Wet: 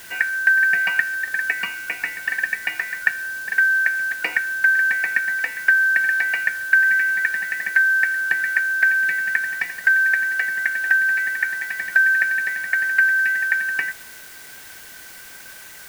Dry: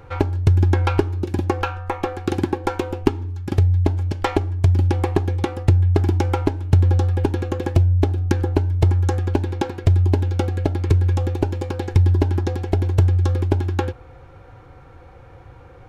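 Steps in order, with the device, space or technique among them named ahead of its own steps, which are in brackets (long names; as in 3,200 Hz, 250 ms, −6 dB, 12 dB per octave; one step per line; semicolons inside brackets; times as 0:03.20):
split-band scrambled radio (band-splitting scrambler in four parts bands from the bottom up 2143; band-pass filter 350–2,900 Hz; white noise bed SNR 21 dB)
level −1.5 dB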